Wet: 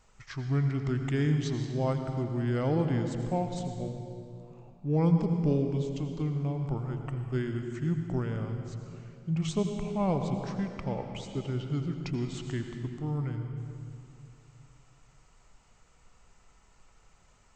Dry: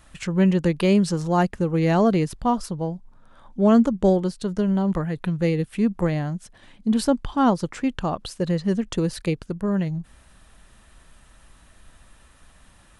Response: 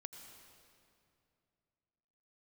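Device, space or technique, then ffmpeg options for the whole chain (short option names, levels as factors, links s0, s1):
slowed and reverbed: -filter_complex "[0:a]asetrate=32634,aresample=44100[s0];[1:a]atrim=start_sample=2205[s1];[s0][s1]afir=irnorm=-1:irlink=0,volume=0.631"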